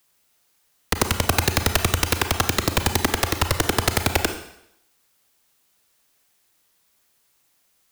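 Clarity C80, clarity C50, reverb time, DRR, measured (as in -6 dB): 12.0 dB, 9.0 dB, 0.80 s, 7.0 dB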